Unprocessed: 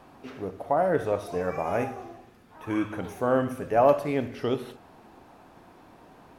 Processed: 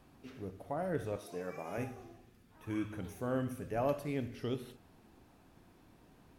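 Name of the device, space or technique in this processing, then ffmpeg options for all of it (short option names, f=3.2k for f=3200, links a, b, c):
smiley-face EQ: -filter_complex "[0:a]lowshelf=f=130:g=7,equalizer=f=830:t=o:w=1.9:g=-8,highshelf=f=7.5k:g=5,asettb=1/sr,asplit=3[a][b][c];[a]atrim=end=1.164[d];[b]atrim=start=1.16:end=1.78,asetpts=PTS-STARTPTS,afade=t=in:d=0.004:c=qsin,afade=t=out:st=0.616:d=0.004:c=qsin,highpass=220[e];[c]atrim=start=1.776[f];[d][e]acrossfade=d=0.004:c1=hsin:c2=qsin[g];[g][f]acrossfade=d=0.004:c1=qsin:c2=hsin,volume=-8dB"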